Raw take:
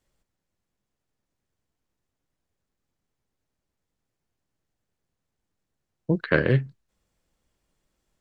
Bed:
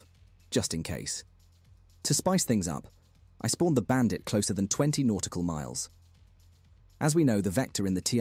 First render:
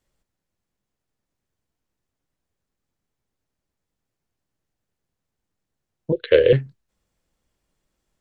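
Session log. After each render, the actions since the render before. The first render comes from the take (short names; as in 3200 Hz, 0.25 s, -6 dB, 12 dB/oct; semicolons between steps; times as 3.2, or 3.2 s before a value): 6.12–6.53 EQ curve 110 Hz 0 dB, 190 Hz -24 dB, 490 Hz +15 dB, 780 Hz -14 dB, 1300 Hz -10 dB, 3500 Hz +14 dB, 5400 Hz -17 dB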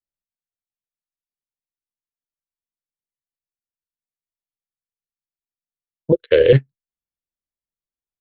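maximiser +10.5 dB; upward expander 2.5:1, over -31 dBFS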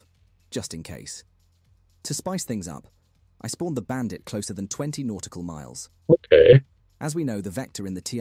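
add bed -2.5 dB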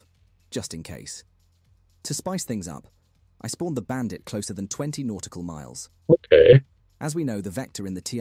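nothing audible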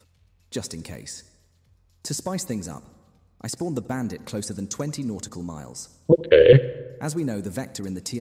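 echo 84 ms -20.5 dB; plate-style reverb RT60 1.4 s, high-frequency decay 0.5×, pre-delay 0.105 s, DRR 19.5 dB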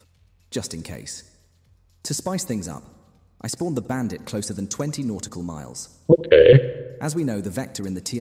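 gain +2.5 dB; limiter -2 dBFS, peak gain reduction 2.5 dB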